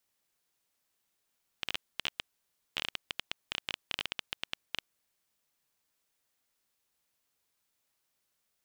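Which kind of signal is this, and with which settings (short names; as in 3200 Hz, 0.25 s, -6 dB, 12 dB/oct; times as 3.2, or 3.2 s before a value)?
random clicks 11/s -14.5 dBFS 3.41 s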